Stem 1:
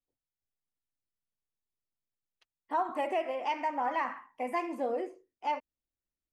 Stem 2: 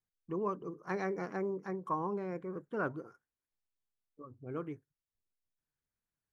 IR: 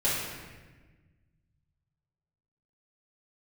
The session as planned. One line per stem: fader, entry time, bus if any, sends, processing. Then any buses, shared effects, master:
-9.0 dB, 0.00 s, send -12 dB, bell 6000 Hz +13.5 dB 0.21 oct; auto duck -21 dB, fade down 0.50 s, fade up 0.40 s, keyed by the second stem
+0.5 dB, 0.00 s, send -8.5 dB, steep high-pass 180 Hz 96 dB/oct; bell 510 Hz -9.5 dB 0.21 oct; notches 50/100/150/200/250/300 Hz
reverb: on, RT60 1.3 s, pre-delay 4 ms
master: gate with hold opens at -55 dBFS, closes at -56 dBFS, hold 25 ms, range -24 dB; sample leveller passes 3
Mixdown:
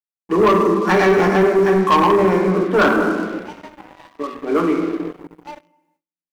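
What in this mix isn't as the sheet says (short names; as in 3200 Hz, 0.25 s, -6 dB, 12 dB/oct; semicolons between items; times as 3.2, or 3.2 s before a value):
stem 1 -9.0 dB -> -17.0 dB; stem 2 +0.5 dB -> +10.5 dB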